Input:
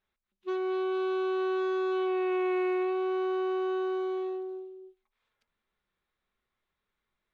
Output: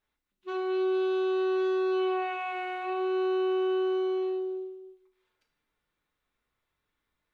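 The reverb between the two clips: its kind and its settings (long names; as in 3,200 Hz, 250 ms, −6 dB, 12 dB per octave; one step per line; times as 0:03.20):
feedback delay network reverb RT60 0.65 s, low-frequency decay 1.5×, high-frequency decay 1×, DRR 2 dB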